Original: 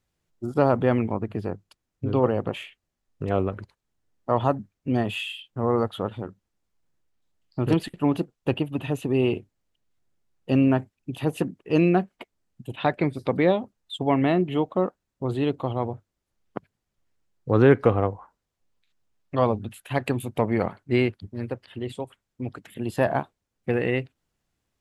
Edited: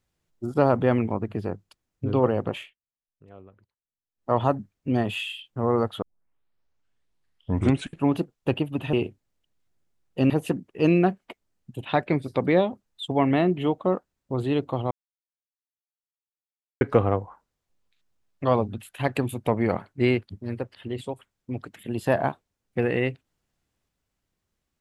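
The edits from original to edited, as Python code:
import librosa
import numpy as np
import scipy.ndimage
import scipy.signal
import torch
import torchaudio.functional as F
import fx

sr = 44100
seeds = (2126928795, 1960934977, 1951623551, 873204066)

y = fx.edit(x, sr, fx.fade_down_up(start_s=2.57, length_s=1.75, db=-23.5, fade_s=0.17),
    fx.tape_start(start_s=6.02, length_s=2.08),
    fx.cut(start_s=8.93, length_s=0.31),
    fx.cut(start_s=10.61, length_s=0.6),
    fx.silence(start_s=15.82, length_s=1.9), tone=tone)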